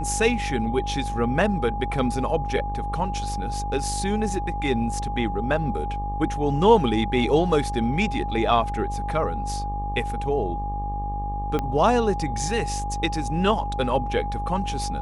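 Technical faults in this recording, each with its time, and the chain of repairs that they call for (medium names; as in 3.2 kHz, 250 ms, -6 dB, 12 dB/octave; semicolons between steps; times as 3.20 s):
buzz 50 Hz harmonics 24 -30 dBFS
whine 820 Hz -29 dBFS
11.59 s: pop -13 dBFS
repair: de-click; de-hum 50 Hz, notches 24; band-stop 820 Hz, Q 30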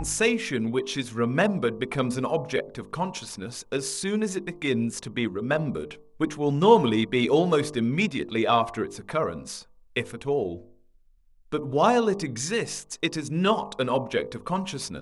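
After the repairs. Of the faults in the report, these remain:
11.59 s: pop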